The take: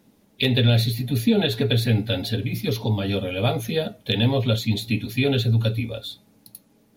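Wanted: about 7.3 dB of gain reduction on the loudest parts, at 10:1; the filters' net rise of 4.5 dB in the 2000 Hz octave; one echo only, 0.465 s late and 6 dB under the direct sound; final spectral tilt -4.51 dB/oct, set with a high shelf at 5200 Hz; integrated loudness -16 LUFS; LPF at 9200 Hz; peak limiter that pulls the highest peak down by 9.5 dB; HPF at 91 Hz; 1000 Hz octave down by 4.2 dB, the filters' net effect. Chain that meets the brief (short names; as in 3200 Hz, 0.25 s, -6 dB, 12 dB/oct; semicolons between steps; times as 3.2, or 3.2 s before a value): HPF 91 Hz; LPF 9200 Hz; bell 1000 Hz -9 dB; bell 2000 Hz +6.5 dB; high shelf 5200 Hz +7 dB; compressor 10:1, threshold -22 dBFS; limiter -17.5 dBFS; echo 0.465 s -6 dB; gain +11.5 dB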